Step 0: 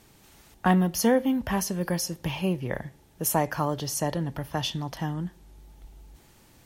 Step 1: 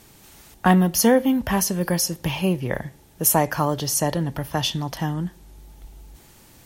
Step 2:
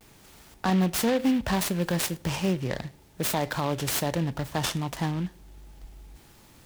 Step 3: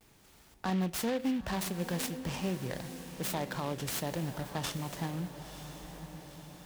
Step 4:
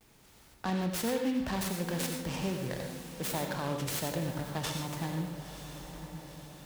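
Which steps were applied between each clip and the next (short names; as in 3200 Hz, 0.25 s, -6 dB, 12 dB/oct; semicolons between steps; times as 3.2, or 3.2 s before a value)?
high shelf 6300 Hz +5 dB; gain +5 dB
limiter -13 dBFS, peak gain reduction 9.5 dB; vibrato 0.46 Hz 40 cents; noise-modulated delay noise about 2300 Hz, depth 0.052 ms; gain -3 dB
diffused feedback echo 0.958 s, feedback 54%, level -10.5 dB; gain -8 dB
reverb RT60 0.50 s, pre-delay 73 ms, DRR 4.5 dB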